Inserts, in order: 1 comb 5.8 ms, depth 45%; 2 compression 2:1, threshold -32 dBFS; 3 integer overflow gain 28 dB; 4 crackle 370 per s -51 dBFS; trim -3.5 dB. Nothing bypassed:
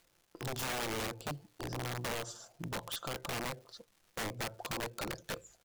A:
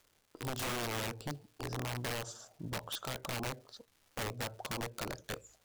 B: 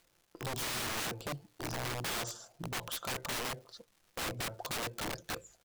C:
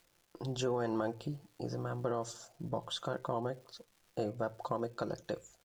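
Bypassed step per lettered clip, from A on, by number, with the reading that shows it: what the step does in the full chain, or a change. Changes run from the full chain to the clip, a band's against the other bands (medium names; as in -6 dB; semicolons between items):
1, 125 Hz band +2.0 dB; 2, mean gain reduction 3.5 dB; 3, crest factor change +8.5 dB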